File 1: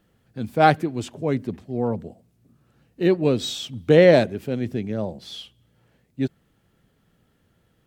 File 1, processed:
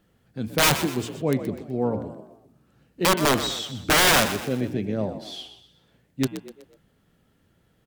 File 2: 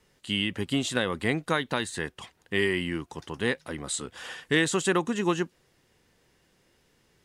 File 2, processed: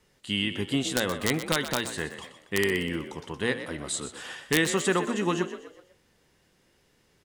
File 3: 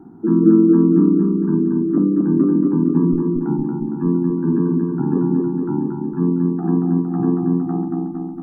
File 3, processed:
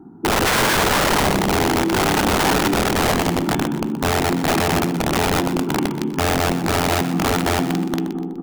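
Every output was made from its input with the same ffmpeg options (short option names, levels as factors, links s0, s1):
-filter_complex "[0:a]aeval=exprs='(mod(4.22*val(0)+1,2)-1)/4.22':c=same,bandreject=f=116.5:t=h:w=4,bandreject=f=233:t=h:w=4,bandreject=f=349.5:t=h:w=4,bandreject=f=466:t=h:w=4,bandreject=f=582.5:t=h:w=4,bandreject=f=699:t=h:w=4,bandreject=f=815.5:t=h:w=4,bandreject=f=932:t=h:w=4,bandreject=f=1048.5:t=h:w=4,bandreject=f=1165:t=h:w=4,bandreject=f=1281.5:t=h:w=4,bandreject=f=1398:t=h:w=4,bandreject=f=1514.5:t=h:w=4,bandreject=f=1631:t=h:w=4,bandreject=f=1747.5:t=h:w=4,bandreject=f=1864:t=h:w=4,bandreject=f=1980.5:t=h:w=4,bandreject=f=2097:t=h:w=4,bandreject=f=2213.5:t=h:w=4,bandreject=f=2330:t=h:w=4,bandreject=f=2446.5:t=h:w=4,bandreject=f=2563:t=h:w=4,bandreject=f=2679.5:t=h:w=4,bandreject=f=2796:t=h:w=4,bandreject=f=2912.5:t=h:w=4,bandreject=f=3029:t=h:w=4,bandreject=f=3145.5:t=h:w=4,bandreject=f=3262:t=h:w=4,bandreject=f=3378.5:t=h:w=4,bandreject=f=3495:t=h:w=4,asplit=5[s0][s1][s2][s3][s4];[s1]adelay=124,afreqshift=50,volume=0.266[s5];[s2]adelay=248,afreqshift=100,volume=0.112[s6];[s3]adelay=372,afreqshift=150,volume=0.0468[s7];[s4]adelay=496,afreqshift=200,volume=0.0197[s8];[s0][s5][s6][s7][s8]amix=inputs=5:normalize=0"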